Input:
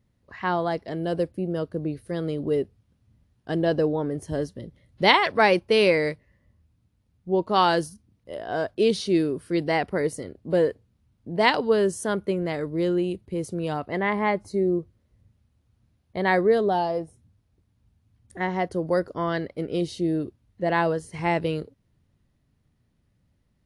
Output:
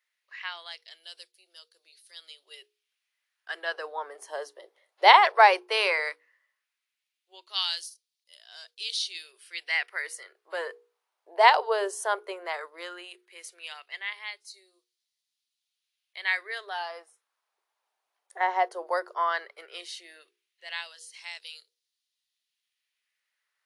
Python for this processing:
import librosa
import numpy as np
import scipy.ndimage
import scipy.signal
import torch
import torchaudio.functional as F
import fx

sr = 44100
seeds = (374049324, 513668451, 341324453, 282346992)

y = fx.filter_lfo_highpass(x, sr, shape='sine', hz=0.15, low_hz=760.0, high_hz=4200.0, q=1.8)
y = scipy.signal.sosfilt(scipy.signal.ellip(4, 1.0, 50, 370.0, 'highpass', fs=sr, output='sos'), y)
y = fx.hum_notches(y, sr, base_hz=60, count=8)